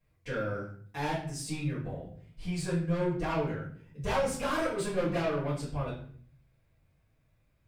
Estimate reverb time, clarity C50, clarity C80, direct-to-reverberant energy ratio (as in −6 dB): 0.55 s, 4.5 dB, 9.5 dB, −10.5 dB